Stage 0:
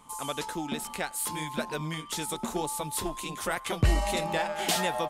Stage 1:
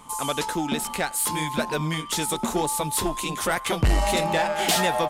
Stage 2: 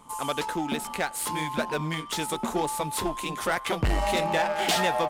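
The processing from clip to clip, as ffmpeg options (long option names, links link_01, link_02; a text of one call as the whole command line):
ffmpeg -i in.wav -af "asoftclip=type=tanh:threshold=-22.5dB,volume=8dB" out.wav
ffmpeg -i in.wav -filter_complex "[0:a]lowshelf=frequency=240:gain=-4.5,asplit=2[link_01][link_02];[link_02]adynamicsmooth=sensitivity=6.5:basefreq=720,volume=-0.5dB[link_03];[link_01][link_03]amix=inputs=2:normalize=0,volume=-7dB" out.wav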